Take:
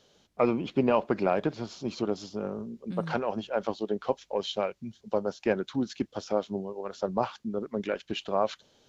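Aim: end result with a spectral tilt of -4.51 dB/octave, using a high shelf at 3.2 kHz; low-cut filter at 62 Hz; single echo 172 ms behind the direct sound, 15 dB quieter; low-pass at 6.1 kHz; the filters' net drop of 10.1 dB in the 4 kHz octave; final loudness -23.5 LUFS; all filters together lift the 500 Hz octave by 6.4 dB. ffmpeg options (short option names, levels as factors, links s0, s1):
-af "highpass=62,lowpass=6100,equalizer=f=500:t=o:g=8,highshelf=f=3200:g=-7.5,equalizer=f=4000:t=o:g=-8.5,aecho=1:1:172:0.178,volume=1.33"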